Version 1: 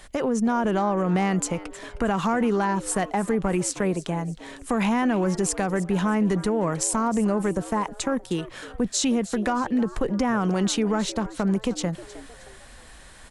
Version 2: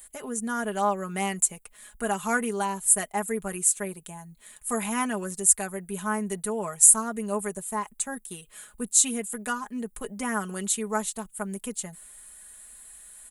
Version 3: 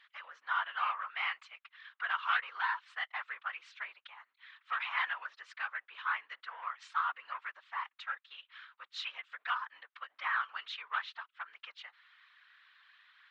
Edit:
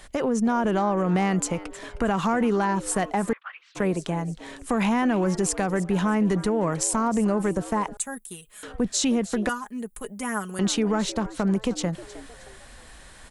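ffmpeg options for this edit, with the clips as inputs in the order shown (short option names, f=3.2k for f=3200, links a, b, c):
-filter_complex "[1:a]asplit=2[a][b];[0:a]asplit=4[c][d][e][f];[c]atrim=end=3.332[g];[2:a]atrim=start=3.328:end=3.752[h];[d]atrim=start=3.748:end=7.972[i];[a]atrim=start=7.968:end=8.632[j];[e]atrim=start=8.628:end=9.492[k];[b]atrim=start=9.488:end=10.592[l];[f]atrim=start=10.588[m];[g][h]acrossfade=d=0.004:c1=hsin:c2=hsin[n];[n][i]acrossfade=d=0.004:c1=hsin:c2=hsin[o];[o][j]acrossfade=d=0.004:c1=hsin:c2=hsin[p];[p][k]acrossfade=d=0.004:c1=hsin:c2=hsin[q];[q][l]acrossfade=d=0.004:c1=hsin:c2=hsin[r];[r][m]acrossfade=d=0.004:c1=hsin:c2=hsin"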